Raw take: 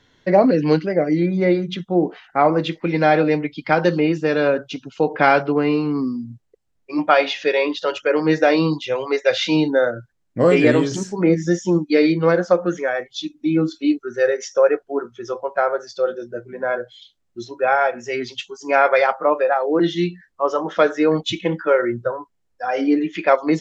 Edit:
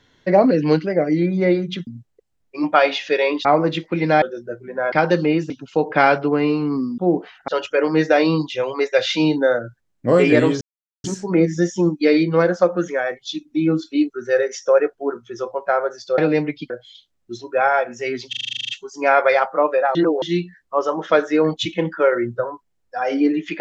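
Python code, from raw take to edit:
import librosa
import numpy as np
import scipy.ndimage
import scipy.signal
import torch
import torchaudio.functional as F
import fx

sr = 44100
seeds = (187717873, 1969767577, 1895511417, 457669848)

y = fx.edit(x, sr, fx.swap(start_s=1.87, length_s=0.5, other_s=6.22, other_length_s=1.58),
    fx.swap(start_s=3.14, length_s=0.52, other_s=16.07, other_length_s=0.7),
    fx.cut(start_s=4.24, length_s=0.5),
    fx.insert_silence(at_s=10.93, length_s=0.43),
    fx.stutter(start_s=18.36, slice_s=0.04, count=11),
    fx.reverse_span(start_s=19.62, length_s=0.27), tone=tone)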